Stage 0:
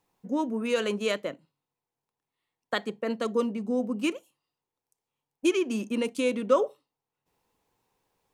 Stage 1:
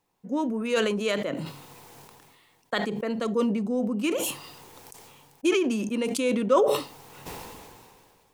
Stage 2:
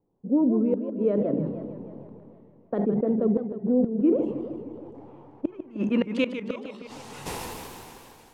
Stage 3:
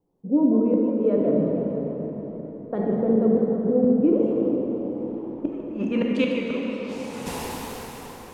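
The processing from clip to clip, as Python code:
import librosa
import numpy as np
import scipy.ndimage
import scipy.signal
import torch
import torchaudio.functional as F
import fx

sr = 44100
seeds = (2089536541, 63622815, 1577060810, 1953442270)

y1 = fx.sustainer(x, sr, db_per_s=27.0)
y2 = fx.filter_sweep_lowpass(y1, sr, from_hz=420.0, to_hz=14000.0, start_s=4.72, end_s=7.54, q=1.1)
y2 = fx.gate_flip(y2, sr, shuts_db=-18.0, range_db=-28)
y2 = fx.echo_warbled(y2, sr, ms=156, feedback_pct=66, rate_hz=2.8, cents=200, wet_db=-10.0)
y2 = y2 * 10.0 ** (5.0 / 20.0)
y3 = fx.rev_plate(y2, sr, seeds[0], rt60_s=4.5, hf_ratio=0.65, predelay_ms=0, drr_db=-1.0)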